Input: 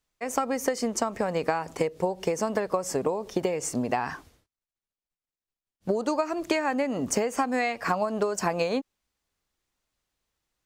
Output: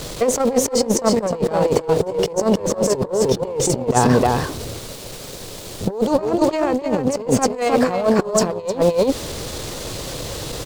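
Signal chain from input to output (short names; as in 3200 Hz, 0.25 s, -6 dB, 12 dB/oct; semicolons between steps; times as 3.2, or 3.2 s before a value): zero-crossing step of -36 dBFS; resonant low shelf 670 Hz +7.5 dB, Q 1.5; on a send: echo 0.307 s -4 dB; on the sum: added harmonics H 4 -16 dB, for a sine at -3 dBFS; graphic EQ 125/500/1000/4000/8000 Hz +9/+7/+7/+8/+5 dB; negative-ratio compressor -16 dBFS, ratio -0.5; gain -1.5 dB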